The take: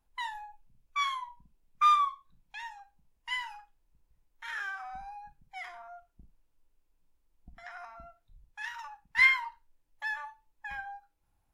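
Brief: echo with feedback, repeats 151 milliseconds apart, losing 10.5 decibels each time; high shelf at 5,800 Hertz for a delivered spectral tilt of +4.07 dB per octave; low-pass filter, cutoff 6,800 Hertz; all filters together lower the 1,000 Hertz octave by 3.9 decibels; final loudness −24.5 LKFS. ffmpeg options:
ffmpeg -i in.wav -af "lowpass=6800,equalizer=frequency=1000:width_type=o:gain=-5,highshelf=frequency=5800:gain=6,aecho=1:1:151|302|453:0.299|0.0896|0.0269,volume=7.5dB" out.wav

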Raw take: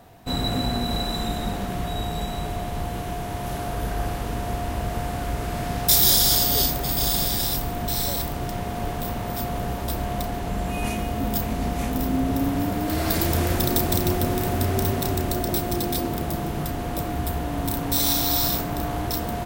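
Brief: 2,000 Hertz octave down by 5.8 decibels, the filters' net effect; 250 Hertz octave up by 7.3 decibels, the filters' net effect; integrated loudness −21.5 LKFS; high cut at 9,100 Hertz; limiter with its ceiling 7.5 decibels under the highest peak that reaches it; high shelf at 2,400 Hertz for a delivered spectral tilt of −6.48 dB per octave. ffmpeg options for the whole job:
ffmpeg -i in.wav -af "lowpass=9100,equalizer=frequency=250:width_type=o:gain=9,equalizer=frequency=2000:width_type=o:gain=-5.5,highshelf=frequency=2400:gain=-4.5,volume=3.5dB,alimiter=limit=-11.5dB:level=0:latency=1" out.wav

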